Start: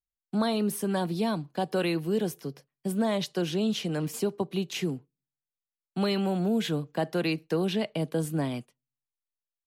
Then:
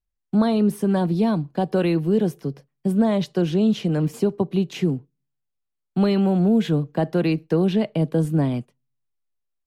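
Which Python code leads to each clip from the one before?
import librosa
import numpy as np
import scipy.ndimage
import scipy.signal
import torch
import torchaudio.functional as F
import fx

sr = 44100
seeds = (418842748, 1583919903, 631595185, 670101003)

y = fx.tilt_eq(x, sr, slope=-2.5)
y = y * librosa.db_to_amplitude(3.5)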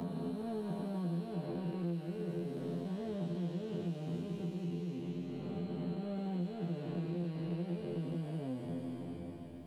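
y = fx.spec_blur(x, sr, span_ms=1050.0)
y = fx.comb_fb(y, sr, f0_hz=86.0, decay_s=0.24, harmonics='all', damping=0.0, mix_pct=100)
y = fx.band_squash(y, sr, depth_pct=100)
y = y * librosa.db_to_amplitude(-5.0)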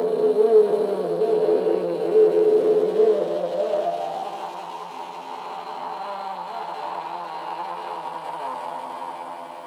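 y = fx.echo_heads(x, sr, ms=186, heads='first and third', feedback_pct=75, wet_db=-11.5)
y = fx.leveller(y, sr, passes=2)
y = fx.filter_sweep_highpass(y, sr, from_hz=450.0, to_hz=910.0, start_s=3.01, end_s=4.58, q=7.7)
y = y * librosa.db_to_amplitude(7.5)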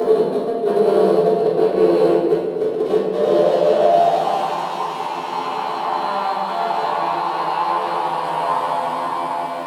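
y = fx.over_compress(x, sr, threshold_db=-23.0, ratio=-0.5)
y = y + 10.0 ** (-13.5 / 20.0) * np.pad(y, (int(239 * sr / 1000.0), 0))[:len(y)]
y = fx.room_shoebox(y, sr, seeds[0], volume_m3=1000.0, walls='mixed', distance_m=3.4)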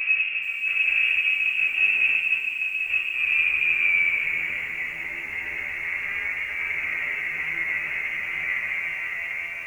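y = fx.freq_invert(x, sr, carrier_hz=3000)
y = fx.echo_crushed(y, sr, ms=424, feedback_pct=35, bits=6, wet_db=-13.0)
y = y * librosa.db_to_amplitude(-7.5)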